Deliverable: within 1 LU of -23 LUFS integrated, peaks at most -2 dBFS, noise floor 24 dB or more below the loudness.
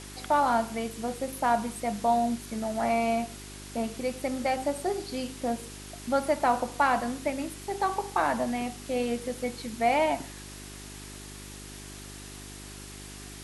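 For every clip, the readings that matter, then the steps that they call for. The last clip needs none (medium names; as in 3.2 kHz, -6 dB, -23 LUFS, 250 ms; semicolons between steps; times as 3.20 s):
hum 50 Hz; highest harmonic 400 Hz; hum level -44 dBFS; noise floor -44 dBFS; noise floor target -53 dBFS; loudness -29.0 LUFS; peak level -12.5 dBFS; loudness target -23.0 LUFS
-> de-hum 50 Hz, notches 8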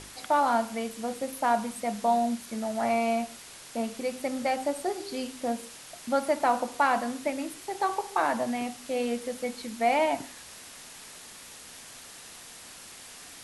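hum not found; noise floor -47 dBFS; noise floor target -53 dBFS
-> noise reduction 6 dB, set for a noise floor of -47 dBFS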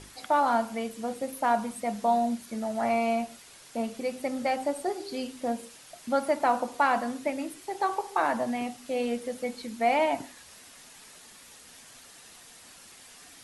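noise floor -51 dBFS; noise floor target -53 dBFS
-> noise reduction 6 dB, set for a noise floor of -51 dBFS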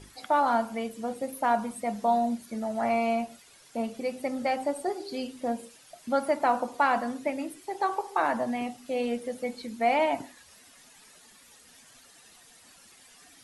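noise floor -56 dBFS; loudness -29.5 LUFS; peak level -12.5 dBFS; loudness target -23.0 LUFS
-> trim +6.5 dB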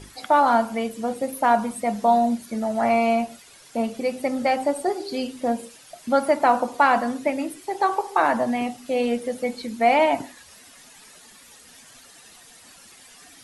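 loudness -23.0 LUFS; peak level -6.0 dBFS; noise floor -49 dBFS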